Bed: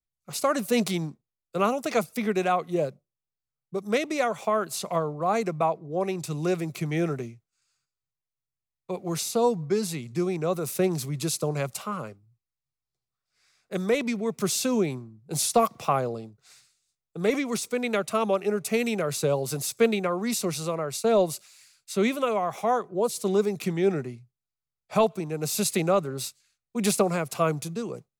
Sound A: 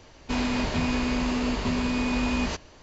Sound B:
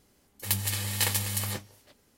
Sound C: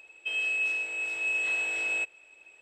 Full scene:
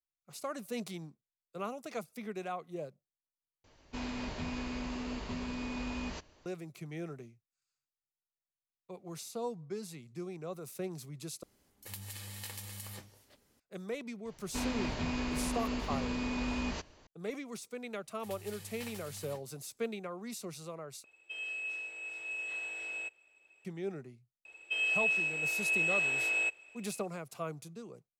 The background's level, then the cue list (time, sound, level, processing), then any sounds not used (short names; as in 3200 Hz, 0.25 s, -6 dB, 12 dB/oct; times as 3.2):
bed -15 dB
3.64 replace with A -12.5 dB
11.43 replace with B -5.5 dB + compressor 2.5:1, threshold -40 dBFS
14.25 add A -9 dB
17.8 add B -18 dB + slew limiter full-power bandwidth 290 Hz
21.04 replace with C -10.5 dB
24.45 add C -1.5 dB